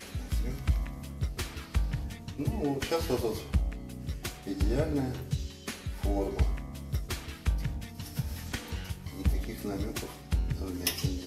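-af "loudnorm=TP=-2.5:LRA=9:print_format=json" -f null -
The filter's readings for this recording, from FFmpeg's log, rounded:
"input_i" : "-34.0",
"input_tp" : "-12.3",
"input_lra" : "1.4",
"input_thresh" : "-44.0",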